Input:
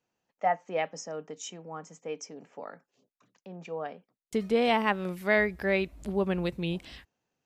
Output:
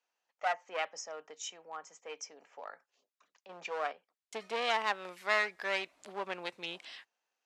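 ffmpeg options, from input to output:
-filter_complex "[0:a]asettb=1/sr,asplit=3[s0][s1][s2];[s0]atrim=end=3.494[s3];[s1]atrim=start=3.49:end=3.92,asetpts=PTS-STARTPTS,afade=t=in:d=0.004:c=qsin,afade=t=out:st=0.426:d=0.004:c=qsin,acontrast=86[s4];[s2]atrim=start=3.916[s5];[s3][s4]acrossfade=d=0.004:c1=hsin:c2=qsin[s6];[s6][s5]acrossfade=d=0.004:c1=qsin:c2=hsin,aeval=exprs='clip(val(0),-1,0.0282)':c=same,highpass=770,lowpass=7600"

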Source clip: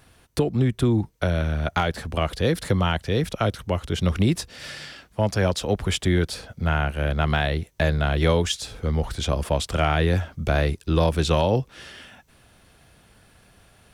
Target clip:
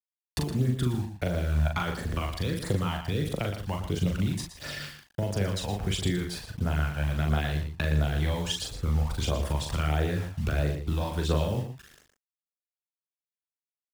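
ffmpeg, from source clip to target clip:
-filter_complex "[0:a]anlmdn=1.58,acompressor=threshold=0.0398:ratio=4,acrusher=bits=7:mix=0:aa=0.000001,flanger=delay=0.1:depth=1.2:regen=11:speed=1.5:shape=triangular,asplit=2[s0][s1];[s1]adelay=40,volume=0.631[s2];[s0][s2]amix=inputs=2:normalize=0,asplit=2[s3][s4];[s4]adelay=116.6,volume=0.355,highshelf=f=4000:g=-2.62[s5];[s3][s5]amix=inputs=2:normalize=0,volume=1.33"

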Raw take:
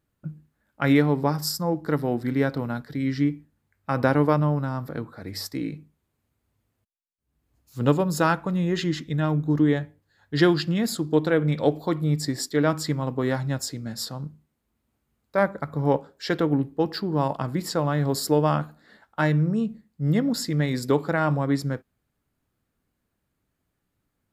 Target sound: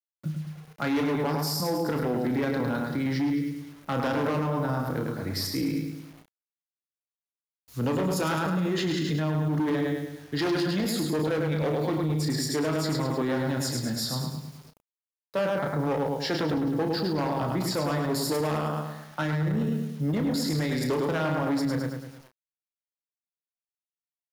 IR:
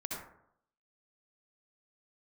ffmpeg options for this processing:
-filter_complex "[0:a]aecho=1:1:105|210|315|420|525|630:0.562|0.259|0.119|0.0547|0.0252|0.0116,acrossover=split=170|3200[s0][s1][s2];[s0]acompressor=threshold=0.0126:ratio=6[s3];[s3][s1][s2]amix=inputs=3:normalize=0,volume=10,asoftclip=hard,volume=0.1,highpass=72,lowshelf=f=170:g=3,acrusher=bits=8:mix=0:aa=0.000001,bandreject=f=7700:w=10,asplit=2[s4][s5];[s5]adelay=32,volume=0.398[s6];[s4][s6]amix=inputs=2:normalize=0,alimiter=limit=0.075:level=0:latency=1:release=11,volume=1.26"

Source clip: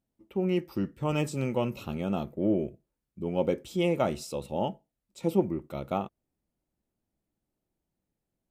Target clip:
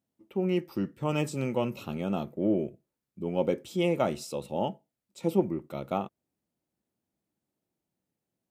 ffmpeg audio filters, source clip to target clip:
-af "highpass=110"

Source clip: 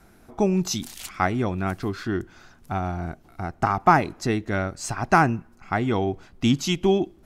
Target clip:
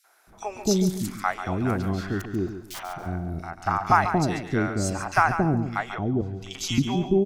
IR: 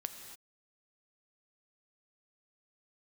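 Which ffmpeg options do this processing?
-filter_complex "[0:a]asettb=1/sr,asplit=3[s0][s1][s2];[s0]atrim=end=0.704[s3];[s1]atrim=start=0.7:end=1.26,asetpts=PTS-STARTPTS,afade=t=in:d=0.004:c=qsin,afade=t=out:st=0.556:d=0.004:c=qsin,equalizer=f=2800:t=o:w=0.5:g=-7.5[s4];[s2]atrim=start=1.256[s5];[s3][s4]acrossfade=d=0.004:c1=hsin:c2=qsin[s6];[s6][s5]acrossfade=d=0.004:c1=qsin:c2=hsin,asplit=3[s7][s8][s9];[s7]afade=t=out:st=2.19:d=0.02[s10];[s8]aeval=exprs='(mod(28.2*val(0)+1,2)-1)/28.2':c=same,afade=t=in:st=2.19:d=0.02,afade=t=out:st=2.78:d=0.02[s11];[s9]afade=t=in:st=2.78:d=0.02[s12];[s10][s11][s12]amix=inputs=3:normalize=0,asplit=2[s13][s14];[s14]aecho=0:1:140|280|420:0.316|0.0822|0.0214[s15];[s13][s15]amix=inputs=2:normalize=0,asettb=1/sr,asplit=3[s16][s17][s18];[s16]atrim=end=5.944[s19];[s17]atrim=start=5.94:end=6.51,asetpts=PTS-STARTPTS,afade=t=in:d=0.004:c=qsin,afade=t=out:st=0.566:d=0.004:c=qsin,acrossover=split=130[s20][s21];[s21]acompressor=threshold=0.0158:ratio=5[s22];[s20][s22]amix=inputs=2:normalize=0[s23];[s18]atrim=start=6.506[s24];[s19][s23]acrossfade=d=0.004:c1=hsin:c2=qsin[s25];[s25][s24]acrossfade=d=0.004:c1=qsin:c2=hsin,acrossover=split=620|2700[s26][s27][s28];[s27]adelay=40[s29];[s26]adelay=270[s30];[s30][s29][s28]amix=inputs=3:normalize=0"

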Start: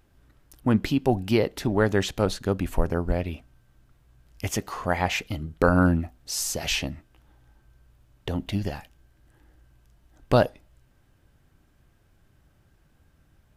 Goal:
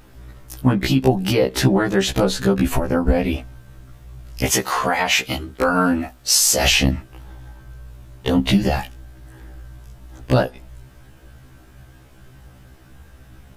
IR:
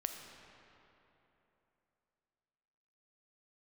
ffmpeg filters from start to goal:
-filter_complex "[0:a]asettb=1/sr,asplit=3[s0][s1][s2];[s0]atrim=end=4.494[s3];[s1]atrim=start=4.49:end=6.59,asetpts=PTS-STARTPTS,afade=t=in:d=0.004:c=qsin,afade=t=out:st=2.096:d=0.004:c=qsin,lowshelf=f=400:g=-11.5[s4];[s2]atrim=start=6.586[s5];[s3][s4]acrossfade=d=0.004:c1=hsin:c2=qsin[s6];[s6][s5]acrossfade=d=0.004:c1=qsin:c2=hsin,acompressor=threshold=0.0447:ratio=10,alimiter=level_in=9.44:limit=0.891:release=50:level=0:latency=1,afftfilt=real='re*1.73*eq(mod(b,3),0)':imag='im*1.73*eq(mod(b,3),0)':win_size=2048:overlap=0.75,volume=0.891"

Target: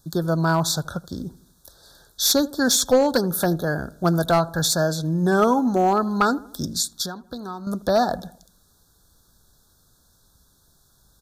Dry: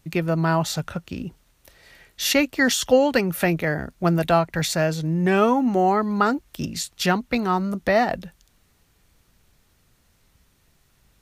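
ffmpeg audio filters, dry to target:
-filter_complex "[0:a]lowpass=f=3800:p=1,asettb=1/sr,asplit=3[s0][s1][s2];[s0]atrim=end=6.994[s3];[s1]atrim=start=6.99:end=7.67,asetpts=PTS-STARTPTS,afade=t=in:d=0.004:c=qsin,afade=t=out:st=0.676:d=0.004:c=qsin,acompressor=threshold=0.0282:ratio=6[s4];[s2]atrim=start=7.666[s5];[s3][s4]acrossfade=d=0.004:c1=hsin:c2=qsin[s6];[s6][s5]acrossfade=d=0.004:c1=qsin:c2=hsin,crystalizer=i=3.5:c=0,asuperstop=centerf=2400:order=20:qfactor=1.4,asplit=2[s7][s8];[s8]adelay=79,lowpass=f=1600:p=1,volume=0.106,asplit=2[s9][s10];[s10]adelay=79,lowpass=f=1600:p=1,volume=0.54,asplit=2[s11][s12];[s12]adelay=79,lowpass=f=1600:p=1,volume=0.54,asplit=2[s13][s14];[s14]adelay=79,lowpass=f=1600:p=1,volume=0.54[s15];[s7][s9][s11][s13][s15]amix=inputs=5:normalize=0,aeval=exprs='clip(val(0),-1,0.237)':c=same"

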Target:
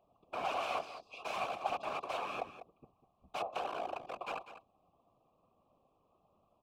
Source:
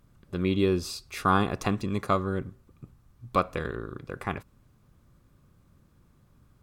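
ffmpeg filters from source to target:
-filter_complex "[0:a]asuperstop=centerf=1700:order=8:qfactor=1.1,acrossover=split=130|1300|2000[s0][s1][s2][s3];[s0]acompressor=threshold=0.00355:ratio=6[s4];[s3]alimiter=level_in=2.99:limit=0.0631:level=0:latency=1,volume=0.335[s5];[s4][s1][s2][s5]amix=inputs=4:normalize=0,aemphasis=mode=reproduction:type=50kf,aeval=exprs='(mod(29.9*val(0)+1,2)-1)/29.9':c=same,asplit=3[s6][s7][s8];[s6]bandpass=f=730:t=q:w=8,volume=1[s9];[s7]bandpass=f=1090:t=q:w=8,volume=0.501[s10];[s8]bandpass=f=2440:t=q:w=8,volume=0.355[s11];[s9][s10][s11]amix=inputs=3:normalize=0,afftfilt=real='hypot(re,im)*cos(2*PI*random(0))':imag='hypot(re,im)*sin(2*PI*random(1))':win_size=512:overlap=0.75,aecho=1:1:197:0.237,volume=6.68"

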